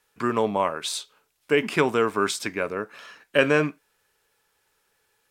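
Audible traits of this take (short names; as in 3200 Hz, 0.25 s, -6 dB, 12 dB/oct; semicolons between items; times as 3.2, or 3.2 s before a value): noise floor -71 dBFS; spectral tilt -4.0 dB/oct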